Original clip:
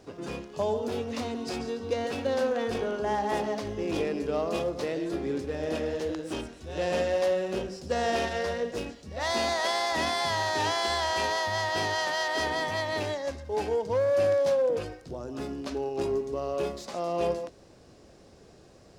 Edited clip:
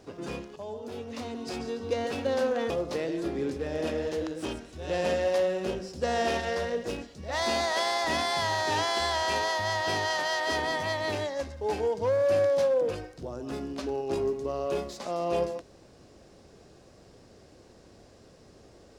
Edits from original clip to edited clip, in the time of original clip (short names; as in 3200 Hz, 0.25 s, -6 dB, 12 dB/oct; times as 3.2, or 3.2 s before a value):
0.56–1.86 fade in, from -13 dB
2.7–4.58 cut